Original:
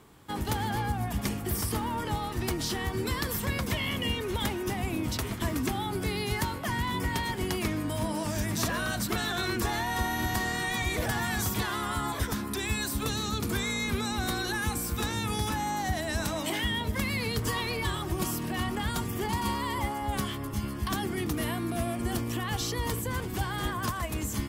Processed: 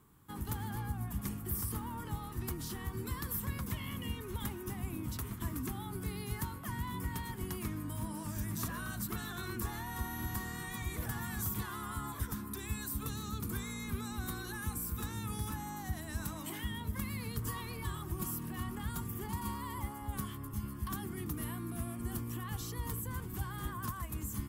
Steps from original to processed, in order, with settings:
drawn EQ curve 170 Hz 0 dB, 370 Hz −6 dB, 640 Hz −13 dB, 1,100 Hz −2 dB, 2,200 Hz −9 dB, 5,100 Hz −9 dB, 13,000 Hz +4 dB
level −6 dB

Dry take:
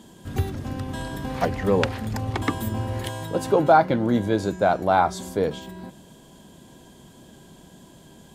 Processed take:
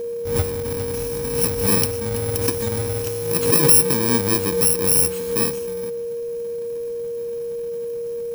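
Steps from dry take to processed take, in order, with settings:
samples in bit-reversed order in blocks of 64 samples
steady tone 470 Hz −26 dBFS
background raised ahead of every attack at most 70 dB per second
level +1.5 dB

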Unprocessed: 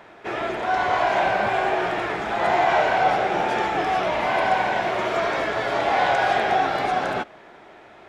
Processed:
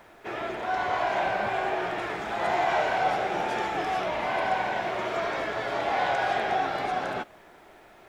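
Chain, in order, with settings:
0:01.98–0:04.04: high-shelf EQ 6,400 Hz +6 dB
background noise pink −59 dBFS
level −6 dB

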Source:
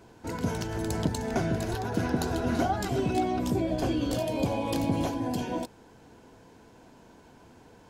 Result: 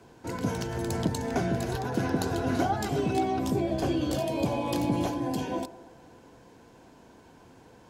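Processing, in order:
frequency shifter +16 Hz
delay with a band-pass on its return 120 ms, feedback 60%, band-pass 600 Hz, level −15 dB

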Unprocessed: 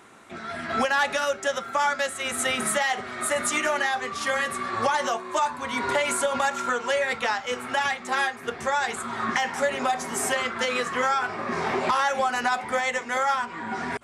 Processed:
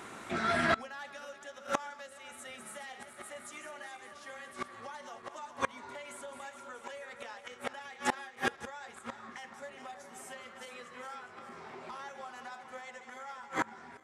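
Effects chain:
feedback delay that plays each chunk backwards 209 ms, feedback 69%, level −9 dB
gate with flip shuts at −20 dBFS, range −26 dB
level +4 dB

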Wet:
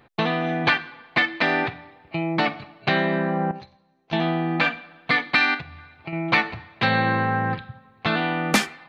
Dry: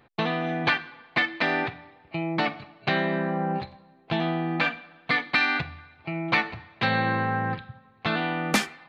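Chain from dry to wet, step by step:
0:03.51–0:04.13: transistor ladder low-pass 6,300 Hz, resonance 80%
0:05.54–0:06.13: downward compressor 4 to 1, threshold −35 dBFS, peak gain reduction 9.5 dB
level +3.5 dB

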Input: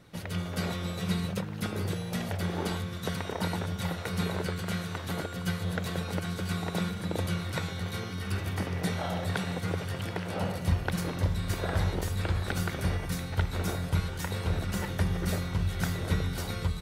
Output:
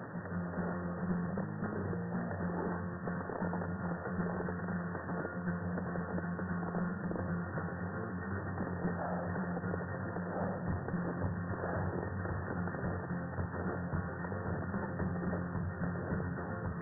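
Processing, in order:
linear delta modulator 16 kbit/s, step −37.5 dBFS
high-pass filter 110 Hz 24 dB per octave
reversed playback
upward compression, threshold −32 dBFS
reversed playback
asymmetric clip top −31.5 dBFS
linear-phase brick-wall low-pass 1,900 Hz
level −2.5 dB

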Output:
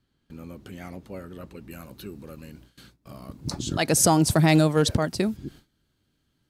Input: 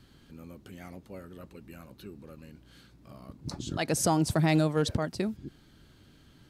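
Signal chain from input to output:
noise gate with hold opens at −44 dBFS
high-shelf EQ 5,900 Hz −2.5 dB, from 0:01.71 +6 dB
level +6 dB

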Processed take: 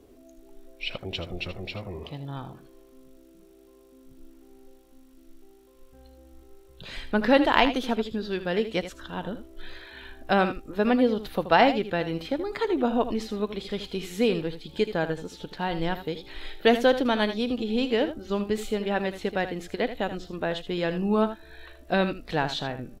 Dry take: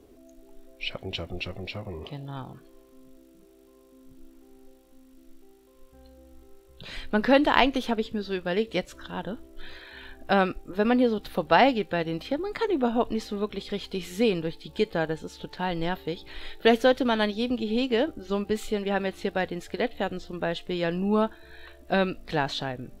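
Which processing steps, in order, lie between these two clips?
single-tap delay 79 ms −11.5 dB

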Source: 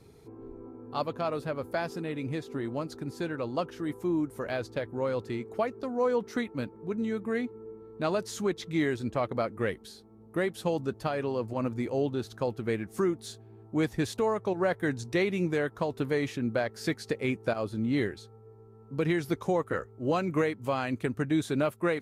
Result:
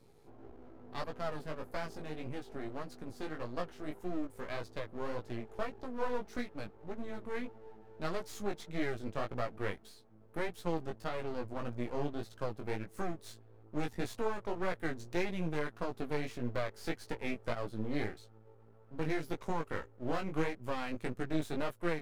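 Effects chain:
half-wave rectification
chorus effect 1.7 Hz, delay 16 ms, depth 4.2 ms
level −1.5 dB

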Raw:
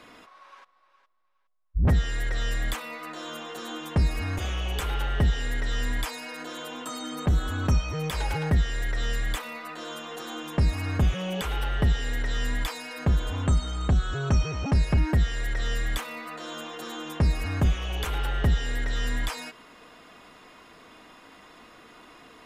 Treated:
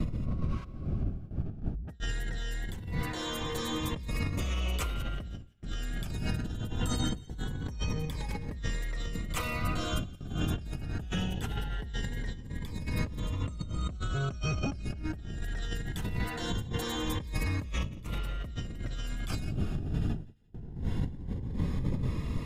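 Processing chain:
wind on the microphone 130 Hz −23 dBFS
compressor whose output falls as the input rises −31 dBFS, ratio −1
noise gate with hold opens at −30 dBFS
delay with a high-pass on its return 172 ms, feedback 39%, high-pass 1,700 Hz, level −22 dB
phaser whose notches keep moving one way rising 0.22 Hz
level −3.5 dB

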